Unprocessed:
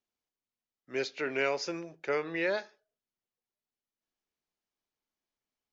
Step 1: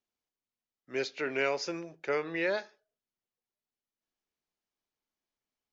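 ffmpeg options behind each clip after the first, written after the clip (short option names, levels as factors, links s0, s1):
-af anull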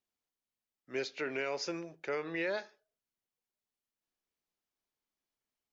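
-af "alimiter=level_in=1.06:limit=0.0631:level=0:latency=1:release=112,volume=0.944,volume=0.841"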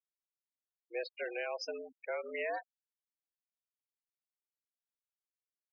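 -af "afreqshift=100,afftfilt=real='re*gte(hypot(re,im),0.0224)':imag='im*gte(hypot(re,im),0.0224)':win_size=1024:overlap=0.75,volume=0.794"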